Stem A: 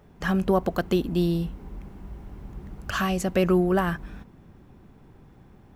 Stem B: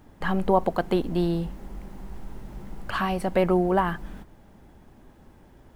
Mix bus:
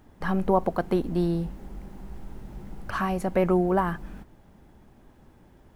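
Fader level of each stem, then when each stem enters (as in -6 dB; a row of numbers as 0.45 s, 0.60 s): -12.0 dB, -3.0 dB; 0.00 s, 0.00 s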